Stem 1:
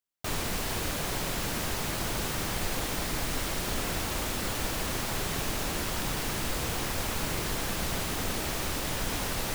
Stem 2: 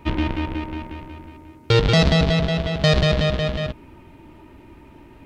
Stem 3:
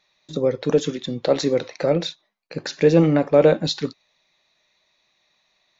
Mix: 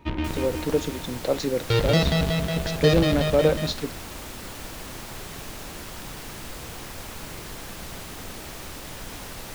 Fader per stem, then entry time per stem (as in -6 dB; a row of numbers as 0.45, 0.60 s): -6.0, -5.5, -5.5 dB; 0.00, 0.00, 0.00 s